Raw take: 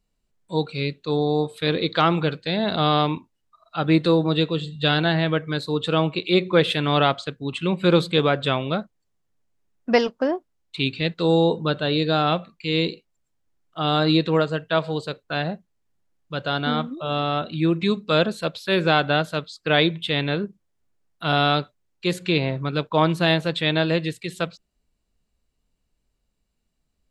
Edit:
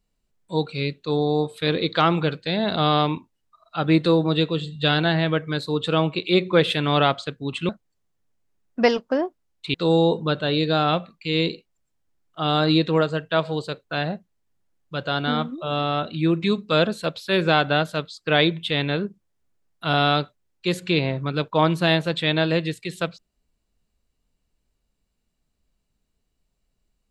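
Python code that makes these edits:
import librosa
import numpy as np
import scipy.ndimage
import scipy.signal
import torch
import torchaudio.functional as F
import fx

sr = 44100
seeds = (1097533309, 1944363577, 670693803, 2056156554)

y = fx.edit(x, sr, fx.cut(start_s=7.69, length_s=1.1),
    fx.cut(start_s=10.84, length_s=0.29), tone=tone)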